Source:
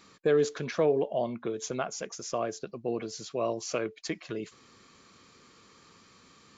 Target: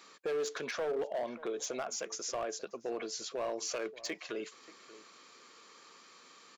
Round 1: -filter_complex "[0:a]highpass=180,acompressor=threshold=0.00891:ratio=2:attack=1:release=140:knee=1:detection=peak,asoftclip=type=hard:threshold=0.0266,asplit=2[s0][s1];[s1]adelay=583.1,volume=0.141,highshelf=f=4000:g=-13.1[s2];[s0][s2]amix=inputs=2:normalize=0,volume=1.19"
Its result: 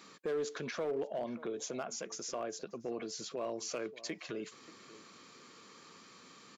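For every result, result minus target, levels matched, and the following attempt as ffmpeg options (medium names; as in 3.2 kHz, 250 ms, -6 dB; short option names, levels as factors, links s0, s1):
compression: peak gain reduction +4.5 dB; 250 Hz band +4.0 dB
-filter_complex "[0:a]highpass=180,acompressor=threshold=0.02:ratio=2:attack=1:release=140:knee=1:detection=peak,asoftclip=type=hard:threshold=0.0266,asplit=2[s0][s1];[s1]adelay=583.1,volume=0.141,highshelf=f=4000:g=-13.1[s2];[s0][s2]amix=inputs=2:normalize=0,volume=1.19"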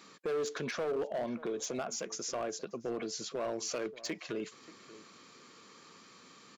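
250 Hz band +4.0 dB
-filter_complex "[0:a]highpass=420,acompressor=threshold=0.02:ratio=2:attack=1:release=140:knee=1:detection=peak,asoftclip=type=hard:threshold=0.0266,asplit=2[s0][s1];[s1]adelay=583.1,volume=0.141,highshelf=f=4000:g=-13.1[s2];[s0][s2]amix=inputs=2:normalize=0,volume=1.19"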